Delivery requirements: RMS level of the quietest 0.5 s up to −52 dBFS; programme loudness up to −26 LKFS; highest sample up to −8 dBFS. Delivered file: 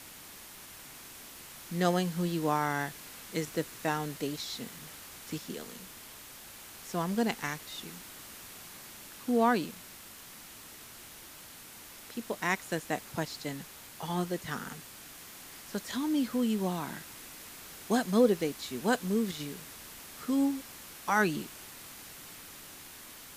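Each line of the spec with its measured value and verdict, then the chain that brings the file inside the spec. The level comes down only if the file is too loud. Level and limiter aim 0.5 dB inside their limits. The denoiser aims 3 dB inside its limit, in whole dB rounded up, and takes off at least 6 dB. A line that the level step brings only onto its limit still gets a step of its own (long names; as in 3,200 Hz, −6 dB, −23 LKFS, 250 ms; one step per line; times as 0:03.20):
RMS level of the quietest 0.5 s −50 dBFS: out of spec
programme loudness −32.5 LKFS: in spec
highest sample −12.5 dBFS: in spec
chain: broadband denoise 6 dB, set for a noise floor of −50 dBFS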